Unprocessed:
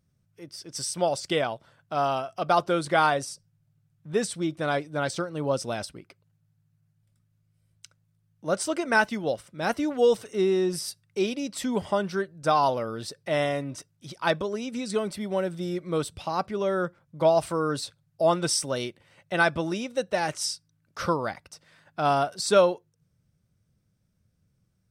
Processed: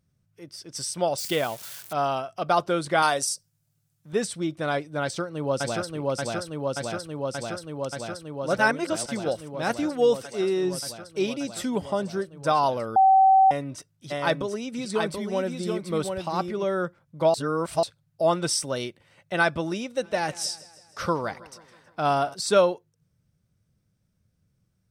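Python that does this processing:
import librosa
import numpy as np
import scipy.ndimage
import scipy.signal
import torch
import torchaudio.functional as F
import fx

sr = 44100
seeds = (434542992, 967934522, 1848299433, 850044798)

y = fx.crossing_spikes(x, sr, level_db=-28.5, at=(1.18, 1.93))
y = fx.bass_treble(y, sr, bass_db=-6, treble_db=12, at=(3.02, 4.13))
y = fx.echo_throw(y, sr, start_s=5.02, length_s=0.9, ms=580, feedback_pct=85, wet_db=-1.0)
y = fx.highpass(y, sr, hz=fx.line((10.22, 420.0), (10.63, 190.0)), slope=6, at=(10.22, 10.63), fade=0.02)
y = fx.dynamic_eq(y, sr, hz=1800.0, q=0.81, threshold_db=-42.0, ratio=4.0, max_db=-6, at=(11.77, 12.32))
y = fx.echo_single(y, sr, ms=732, db=-4.5, at=(14.1, 16.63), fade=0.02)
y = fx.echo_feedback(y, sr, ms=160, feedback_pct=56, wet_db=-19.5, at=(20.0, 22.33), fade=0.02)
y = fx.edit(y, sr, fx.reverse_span(start_s=8.57, length_s=0.49),
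    fx.bleep(start_s=12.96, length_s=0.55, hz=768.0, db=-13.0),
    fx.reverse_span(start_s=17.34, length_s=0.49), tone=tone)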